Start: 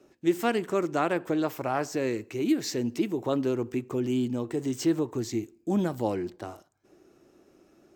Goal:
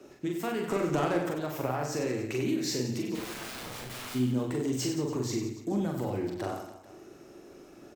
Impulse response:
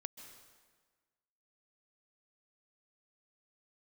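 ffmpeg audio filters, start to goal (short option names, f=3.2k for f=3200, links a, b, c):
-filter_complex "[0:a]bandreject=f=60:t=h:w=6,bandreject=f=120:t=h:w=6,bandreject=f=180:t=h:w=6,bandreject=f=240:t=h:w=6,bandreject=f=300:t=h:w=6,acrossover=split=120[a][b];[b]acompressor=threshold=-33dB:ratio=6[c];[a][c]amix=inputs=2:normalize=0,alimiter=level_in=5.5dB:limit=-24dB:level=0:latency=1:release=375,volume=-5.5dB,asettb=1/sr,asplit=3[d][e][f];[d]atrim=end=0.704[g];[e]atrim=start=0.7:end=1.29,asetpts=PTS-STARTPTS,afade=t=in:d=0.004:c=qsin,afade=t=out:st=0.586:d=0.004:c=qsin,acontrast=54[h];[f]atrim=start=1.286[i];[g][h]acrossfade=d=0.004:c1=hsin:c2=qsin[j];[j][i]acrossfade=d=0.004:c1=qsin:c2=hsin,aeval=exprs='0.0335*(cos(1*acos(clip(val(0)/0.0335,-1,1)))-cos(1*PI/2))+0.000422*(cos(5*acos(clip(val(0)/0.0335,-1,1)))-cos(5*PI/2))':c=same,asplit=3[k][l][m];[k]afade=t=out:st=3.14:d=0.02[n];[l]aeval=exprs='(mod(168*val(0)+1,2)-1)/168':c=same,afade=t=in:st=3.14:d=0.02,afade=t=out:st=4.14:d=0.02[o];[m]afade=t=in:st=4.14:d=0.02[p];[n][o][p]amix=inputs=3:normalize=0,asplit=2[q][r];[r]adelay=47,volume=-9dB[s];[q][s]amix=inputs=2:normalize=0,asplit=2[t][u];[u]aecho=0:1:40|96|174.4|284.2|437.8:0.631|0.398|0.251|0.158|0.1[v];[t][v]amix=inputs=2:normalize=0,volume=6dB"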